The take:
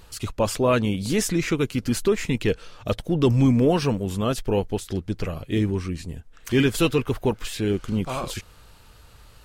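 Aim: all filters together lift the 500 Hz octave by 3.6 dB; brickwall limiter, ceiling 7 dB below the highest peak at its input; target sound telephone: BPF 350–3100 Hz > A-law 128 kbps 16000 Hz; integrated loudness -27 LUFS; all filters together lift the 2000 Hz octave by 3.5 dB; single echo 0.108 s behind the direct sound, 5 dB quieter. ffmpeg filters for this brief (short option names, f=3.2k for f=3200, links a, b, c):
-af "equalizer=f=500:t=o:g=6,equalizer=f=2k:t=o:g=5.5,alimiter=limit=-12.5dB:level=0:latency=1,highpass=350,lowpass=3.1k,aecho=1:1:108:0.562,volume=-1dB" -ar 16000 -c:a pcm_alaw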